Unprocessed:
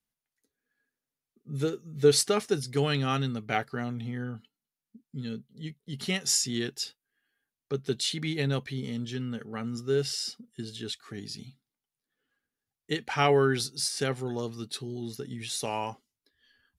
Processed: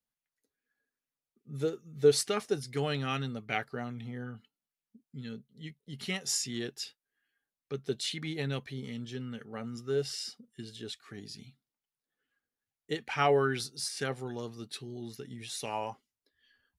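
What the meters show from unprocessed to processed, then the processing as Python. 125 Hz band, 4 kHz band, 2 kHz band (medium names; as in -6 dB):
-6.0 dB, -5.5 dB, -3.0 dB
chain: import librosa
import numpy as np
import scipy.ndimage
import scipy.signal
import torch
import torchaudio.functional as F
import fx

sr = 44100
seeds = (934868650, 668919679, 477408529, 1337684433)

y = fx.bell_lfo(x, sr, hz=2.4, low_hz=520.0, high_hz=2600.0, db=7)
y = y * 10.0 ** (-6.0 / 20.0)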